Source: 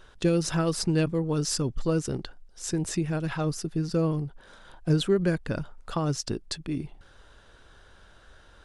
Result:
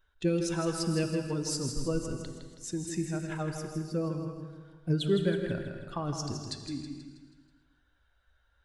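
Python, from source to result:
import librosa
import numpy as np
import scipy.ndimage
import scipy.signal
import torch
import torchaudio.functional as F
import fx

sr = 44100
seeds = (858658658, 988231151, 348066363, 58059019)

y = fx.bin_expand(x, sr, power=1.5)
y = fx.echo_feedback(y, sr, ms=161, feedback_pct=48, wet_db=-7.5)
y = fx.rev_gated(y, sr, seeds[0], gate_ms=310, shape='flat', drr_db=7.0)
y = y * 10.0 ** (-3.5 / 20.0)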